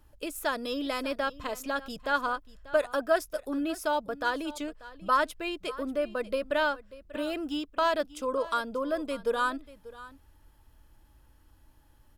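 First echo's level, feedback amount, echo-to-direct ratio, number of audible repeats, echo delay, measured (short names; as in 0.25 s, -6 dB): -18.0 dB, no steady repeat, -18.0 dB, 1, 0.589 s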